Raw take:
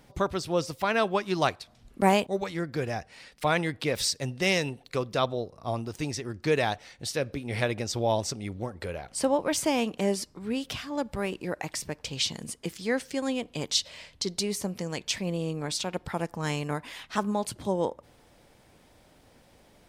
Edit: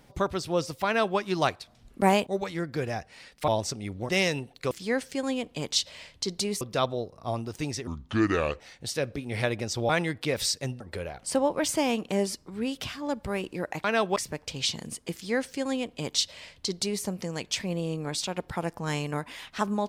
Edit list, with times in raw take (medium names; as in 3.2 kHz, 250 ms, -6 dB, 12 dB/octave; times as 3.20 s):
0.86–1.18 s: copy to 11.73 s
3.48–4.39 s: swap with 8.08–8.69 s
6.27–6.79 s: speed 71%
12.70–14.60 s: copy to 5.01 s